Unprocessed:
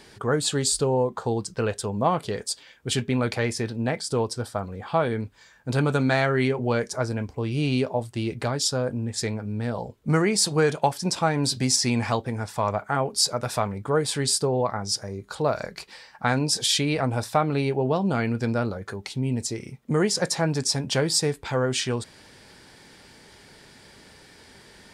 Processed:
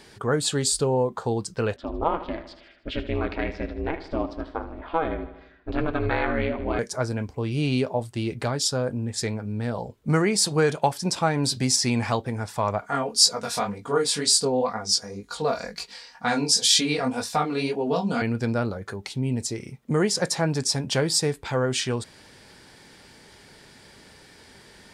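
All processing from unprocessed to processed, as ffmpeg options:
ffmpeg -i in.wav -filter_complex "[0:a]asettb=1/sr,asplit=3[link_01][link_02][link_03];[link_01]atrim=end=1.764[link_04];[link_02]atrim=start=1.76:end=6.79,asetpts=PTS-STARTPTS,afade=type=in:duration=0.004:curve=qsin,afade=type=out:start_time=5.026:duration=0.004:curve=qsin,lowpass=frequency=3300:width=0.5412,lowpass=frequency=3300:width=1.3066,aeval=exprs='val(0)*sin(2*PI*160*n/s)':channel_layout=same,aecho=1:1:77|154|231|308|385|462:0.224|0.128|0.0727|0.0415|0.0236|0.0135,atrim=end_sample=221823[link_05];[link_03]atrim=start=6.786[link_06];[link_04][link_05]acrossfade=duration=0.004:curve1=hsin:curve2=qsin[link_07];[link_07][link_06]acrossfade=duration=0.004:curve1=qsin:curve2=hsin,asettb=1/sr,asplit=3[link_08][link_09][link_10];[link_08]atrim=end=12.814[link_11];[link_09]atrim=start=12.81:end=18.22,asetpts=PTS-STARTPTS,afade=type=in:duration=0.004:curve=qsin,afade=type=out:start_time=5.406:duration=0.004:curve=qsin,equalizer=frequency=5600:width=0.7:gain=7,aecho=1:1:4.2:0.7,atrim=end_sample=238581,flanger=delay=17.5:depth=6.3:speed=2[link_12];[link_10]atrim=start=18.216[link_13];[link_11][link_12]acrossfade=duration=0.004:curve1=hsin:curve2=qsin[link_14];[link_14][link_13]acrossfade=duration=0.004:curve1=qsin:curve2=hsin" out.wav

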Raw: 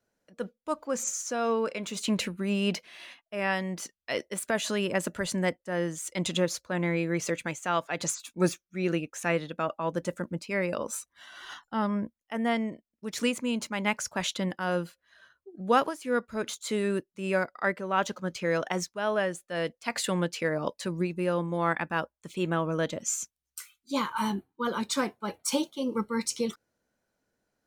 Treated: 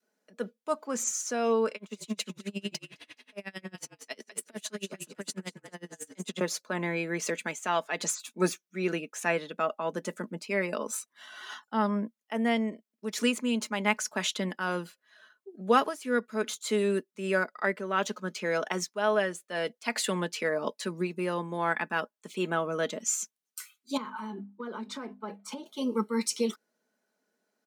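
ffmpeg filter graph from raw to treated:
ffmpeg -i in.wav -filter_complex "[0:a]asettb=1/sr,asplit=3[link_01][link_02][link_03];[link_01]atrim=end=1.754[link_04];[link_02]atrim=start=1.75:end=6.41,asetpts=PTS-STARTPTS,afade=type=in:duration=0.004:curve=qsin,afade=type=out:start_time=4.656:duration=0.004:curve=qsin,acrossover=split=220|3000[link_05][link_06][link_07];[link_06]acompressor=threshold=-35dB:ratio=6:attack=3.2:release=140:knee=2.83:detection=peak[link_08];[link_05][link_08][link_07]amix=inputs=3:normalize=0,asplit=5[link_09][link_10][link_11][link_12][link_13];[link_10]adelay=211,afreqshift=-48,volume=-6.5dB[link_14];[link_11]adelay=422,afreqshift=-96,volume=-15.6dB[link_15];[link_12]adelay=633,afreqshift=-144,volume=-24.7dB[link_16];[link_13]adelay=844,afreqshift=-192,volume=-33.9dB[link_17];[link_09][link_14][link_15][link_16][link_17]amix=inputs=5:normalize=0,atrim=end_sample=205506,aeval=exprs='val(0)*pow(10,-32*(0.5-0.5*cos(2*PI*11*n/s))/20)':channel_layout=same[link_18];[link_03]atrim=start=6.406[link_19];[link_04][link_18]acrossfade=duration=0.004:curve1=hsin:curve2=qsin[link_20];[link_20][link_19]acrossfade=duration=0.004:curve1=qsin:curve2=hsin,asettb=1/sr,asplit=3[link_21][link_22][link_23];[link_21]atrim=end=23.974[link_24];[link_22]atrim=start=23.97:end=25.66,asetpts=PTS-STARTPTS,afade=type=in:duration=0.004:curve=qsin,afade=type=out:start_time=1.686:duration=0.004:curve=qsin,lowpass=frequency=1300:poles=1,bandreject=frequency=50:width_type=h:width=6,bandreject=frequency=100:width_type=h:width=6,bandreject=frequency=150:width_type=h:width=6,bandreject=frequency=200:width_type=h:width=6,bandreject=frequency=250:width_type=h:width=6,acompressor=threshold=-34dB:ratio=10:attack=3.2:release=140:knee=1:detection=peak[link_25];[link_23]atrim=start=25.656[link_26];[link_24][link_25]acrossfade=duration=0.004:curve1=hsin:curve2=qsin[link_27];[link_27][link_26]acrossfade=duration=0.004:curve1=qsin:curve2=hsin,highpass=frequency=210:width=0.5412,highpass=frequency=210:width=1.3066,aecho=1:1:4.7:0.46,adynamicequalizer=threshold=0.00708:dfrequency=710:dqfactor=1.7:tfrequency=710:tqfactor=1.7:attack=5:release=100:ratio=0.375:range=2:mode=cutabove:tftype=bell" out.wav

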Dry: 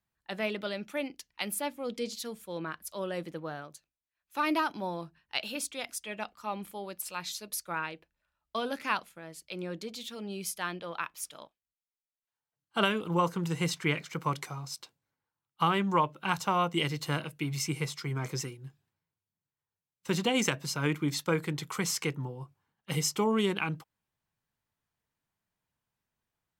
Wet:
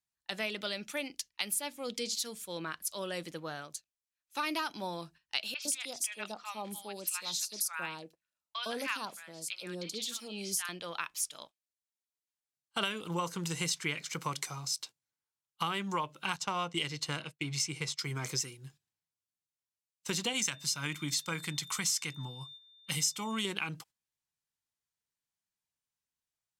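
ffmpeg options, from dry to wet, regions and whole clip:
ffmpeg -i in.wav -filter_complex "[0:a]asettb=1/sr,asplit=3[link_01][link_02][link_03];[link_01]atrim=end=5.544[link_04];[link_02]atrim=start=5.54:end=10.69,asetpts=PTS-STARTPTS,afade=type=in:duration=0.004:curve=qsin,afade=type=out:start_time=5.146:duration=0.004:curve=qsin,highpass=110,acrossover=split=990|4100[link_05][link_06][link_07];[link_07]adelay=80[link_08];[link_05]adelay=110[link_09];[link_09][link_06][link_08]amix=inputs=3:normalize=0,atrim=end_sample=227115[link_10];[link_03]atrim=start=10.686[link_11];[link_04][link_10]acrossfade=duration=0.004:curve1=hsin:curve2=qsin[link_12];[link_12][link_11]acrossfade=duration=0.004:curve1=qsin:curve2=hsin,asettb=1/sr,asplit=3[link_13][link_14][link_15];[link_13]atrim=end=16.364[link_16];[link_14]atrim=start=16.36:end=17.99,asetpts=PTS-STARTPTS,afade=type=in:duration=0.004:curve=qsin,afade=type=out:start_time=1.626:duration=0.004:curve=qsin,agate=range=-33dB:threshold=-39dB:ratio=3:release=100:detection=peak,adynamicsmooth=sensitivity=6.5:basefreq=6300[link_17];[link_15]atrim=start=17.986[link_18];[link_16][link_17]acrossfade=duration=0.004:curve1=hsin:curve2=qsin[link_19];[link_19][link_18]acrossfade=duration=0.004:curve1=qsin:curve2=hsin,asettb=1/sr,asplit=3[link_20][link_21][link_22];[link_20]atrim=end=20.334[link_23];[link_21]atrim=start=20.33:end=23.45,asetpts=PTS-STARTPTS,afade=type=in:duration=0.004:curve=qsin,afade=type=out:start_time=3.116:duration=0.004:curve=qsin,equalizer=frequency=430:width=1.9:gain=-10,aeval=exprs='val(0)+0.002*sin(2*PI*3600*n/s)':channel_layout=same[link_24];[link_22]atrim=start=23.446[link_25];[link_23][link_24]acrossfade=duration=0.004:curve1=hsin:curve2=qsin[link_26];[link_26][link_25]acrossfade=duration=0.004:curve1=qsin:curve2=hsin,agate=range=-11dB:threshold=-53dB:ratio=16:detection=peak,equalizer=frequency=7000:width=0.36:gain=14.5,acompressor=threshold=-29dB:ratio=2.5,volume=-3.5dB" out.wav

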